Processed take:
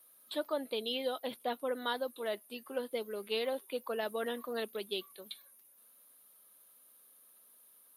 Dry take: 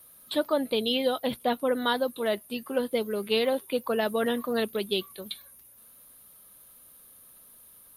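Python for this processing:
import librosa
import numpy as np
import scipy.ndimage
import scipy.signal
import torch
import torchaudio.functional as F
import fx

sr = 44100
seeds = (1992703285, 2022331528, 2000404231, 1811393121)

y = scipy.signal.sosfilt(scipy.signal.butter(2, 290.0, 'highpass', fs=sr, output='sos'), x)
y = y * 10.0 ** (-8.5 / 20.0)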